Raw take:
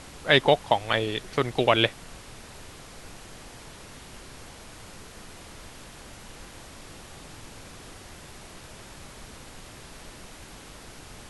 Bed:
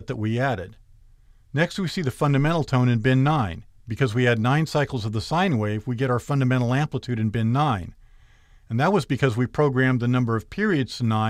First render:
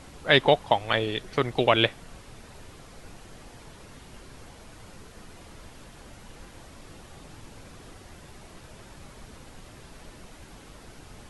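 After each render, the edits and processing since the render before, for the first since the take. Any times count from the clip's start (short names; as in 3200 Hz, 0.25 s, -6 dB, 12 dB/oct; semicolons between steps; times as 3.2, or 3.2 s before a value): denoiser 6 dB, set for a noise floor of -46 dBFS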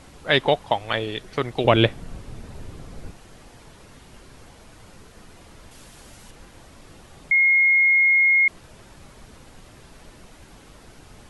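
1.64–3.11 low shelf 470 Hz +11 dB; 5.71–6.31 high shelf 3700 Hz +8 dB; 7.31–8.48 bleep 2150 Hz -13.5 dBFS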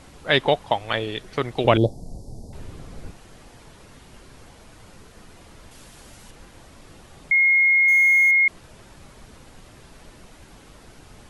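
1.77–2.53 elliptic band-stop 780–4800 Hz, stop band 60 dB; 7.88–8.31 zero-crossing step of -30 dBFS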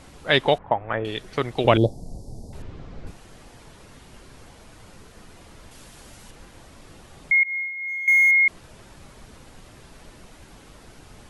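0.58–1.05 LPF 1800 Hz 24 dB/oct; 2.62–3.07 air absorption 140 m; 7.43–8.08 resonator 58 Hz, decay 1.8 s, mix 100%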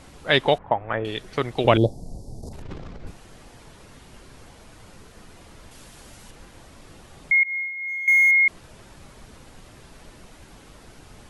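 2.41–3 transient shaper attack -9 dB, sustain +11 dB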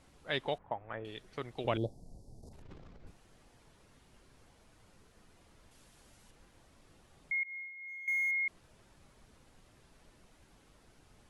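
gain -16 dB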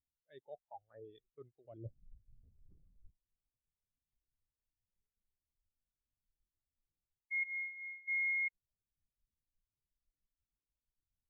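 reverse; compressor 8:1, threshold -42 dBFS, peak gain reduction 16 dB; reverse; spectral expander 2.5:1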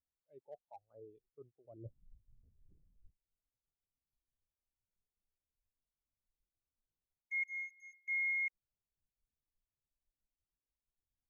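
Wiener smoothing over 25 samples; tone controls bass -3 dB, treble +1 dB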